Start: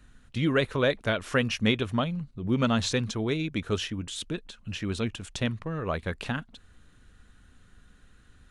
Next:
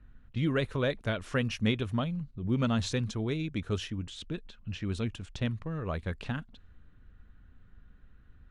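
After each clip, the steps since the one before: low-pass opened by the level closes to 2100 Hz, open at -26 dBFS; low shelf 180 Hz +8.5 dB; gain -6.5 dB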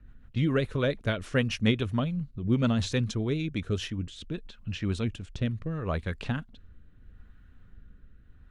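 rotary speaker horn 7 Hz, later 0.75 Hz, at 3.21; gain +4.5 dB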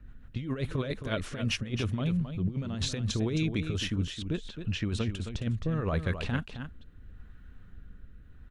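negative-ratio compressor -29 dBFS, ratio -0.5; on a send: echo 0.266 s -9 dB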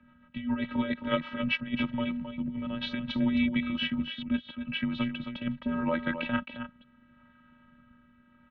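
robotiser 341 Hz; mistuned SSB -100 Hz 150–3400 Hz; gain +7 dB

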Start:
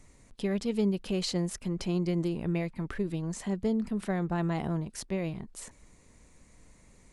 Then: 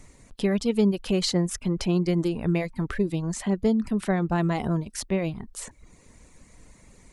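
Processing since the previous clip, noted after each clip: reverb removal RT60 0.58 s; gain +7 dB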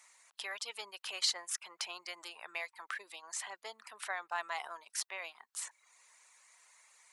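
HPF 900 Hz 24 dB/oct; gain -3.5 dB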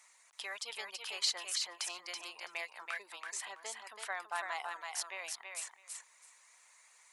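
thinning echo 0.329 s, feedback 16%, high-pass 420 Hz, level -4 dB; gain -1 dB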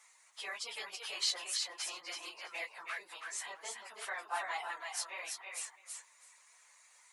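phase scrambler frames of 50 ms

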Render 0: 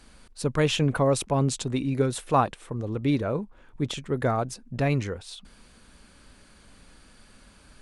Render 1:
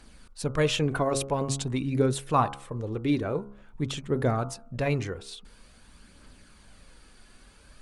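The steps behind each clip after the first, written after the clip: de-hum 68.47 Hz, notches 22; phaser 0.48 Hz, delay 3 ms, feedback 32%; gain -1.5 dB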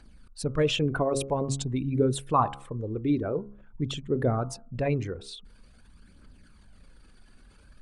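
formant sharpening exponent 1.5

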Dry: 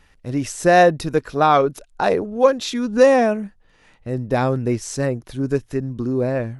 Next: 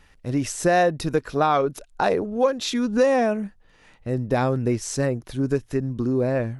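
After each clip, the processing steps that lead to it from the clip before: compressor 2.5:1, threshold -18 dBFS, peak gain reduction 7.5 dB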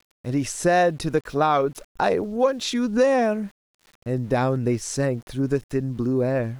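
sample gate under -46.5 dBFS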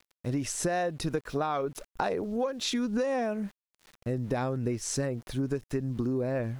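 compressor, threshold -25 dBFS, peak gain reduction 11 dB; gain -1.5 dB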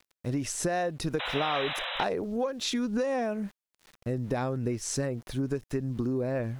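painted sound noise, 1.19–2.04, 490–4000 Hz -34 dBFS

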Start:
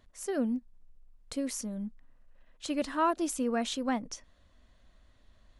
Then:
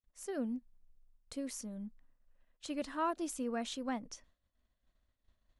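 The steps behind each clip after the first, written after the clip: expander -51 dBFS; gain -7 dB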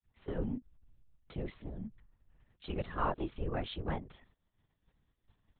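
LPC vocoder at 8 kHz whisper; gain +1.5 dB

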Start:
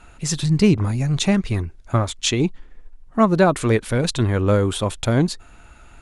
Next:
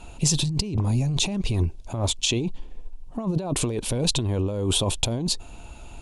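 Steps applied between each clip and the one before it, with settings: negative-ratio compressor -24 dBFS, ratio -1; band shelf 1600 Hz -12.5 dB 1 oct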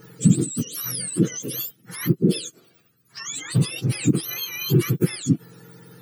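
spectrum mirrored in octaves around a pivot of 1100 Hz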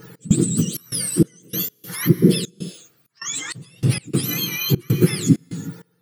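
on a send at -10 dB: reverb, pre-delay 3 ms; on the sum: step gate "x.xxx.xx..x.xxx" 98 bpm -24 dB; gain +4.5 dB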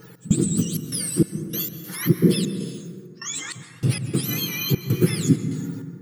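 plate-style reverb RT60 2.1 s, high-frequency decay 0.3×, pre-delay 0.12 s, DRR 9.5 dB; gain -3 dB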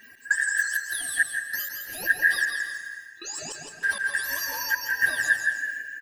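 four-band scrambler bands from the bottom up 2143; on a send: tapped delay 0.161/0.168/0.329 s -9.5/-6.5/-12 dB; on the sum: gain -5 dB

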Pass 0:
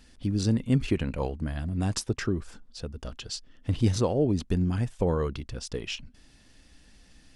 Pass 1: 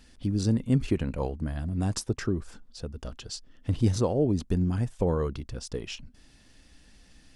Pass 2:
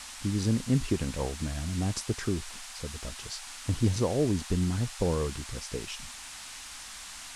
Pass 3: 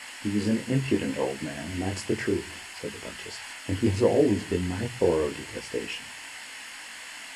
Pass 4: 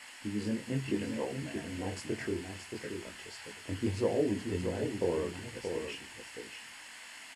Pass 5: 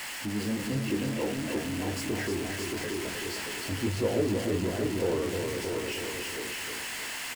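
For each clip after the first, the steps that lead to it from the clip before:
dynamic EQ 2700 Hz, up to -5 dB, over -51 dBFS, Q 0.76
band noise 740–9600 Hz -42 dBFS; gain -2 dB
chorus voices 2, 0.72 Hz, delay 21 ms, depth 2.4 ms; reverb RT60 0.90 s, pre-delay 3 ms, DRR 20 dB; gain +2 dB
echo 0.627 s -6.5 dB; gain -8.5 dB
zero-crossing step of -34 dBFS; feedback echo 0.312 s, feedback 46%, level -5.5 dB

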